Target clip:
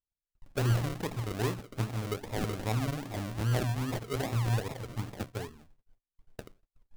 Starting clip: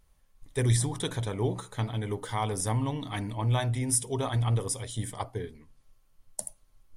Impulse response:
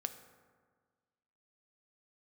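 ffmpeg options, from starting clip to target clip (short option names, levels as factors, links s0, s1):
-filter_complex "[0:a]acrossover=split=7800[s0][s1];[s1]acompressor=threshold=0.00447:ratio=4:attack=1:release=60[s2];[s0][s2]amix=inputs=2:normalize=0,agate=range=0.0224:threshold=0.00178:ratio=16:detection=peak,acrusher=samples=41:mix=1:aa=0.000001:lfo=1:lforange=24.6:lforate=2.5,volume=0.75"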